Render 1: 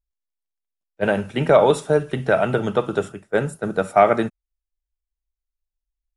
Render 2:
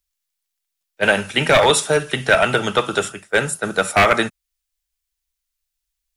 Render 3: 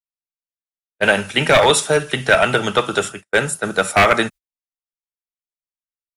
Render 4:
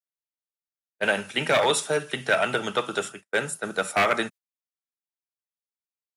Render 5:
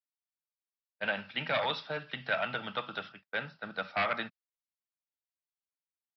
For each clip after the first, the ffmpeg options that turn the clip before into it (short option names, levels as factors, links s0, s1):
-filter_complex "[0:a]tiltshelf=f=1100:g=-9,acrossover=split=140|1400|3300[s0][s1][s2][s3];[s1]aeval=exprs='0.168*(abs(mod(val(0)/0.168+3,4)-2)-1)':c=same[s4];[s0][s4][s2][s3]amix=inputs=4:normalize=0,volume=2.24"
-af "agate=range=0.0224:threshold=0.02:ratio=16:detection=peak,volume=1.12"
-af "highpass=150,volume=0.376"
-af "equalizer=f=390:t=o:w=0.53:g=-13,aresample=11025,aresample=44100,volume=0.398"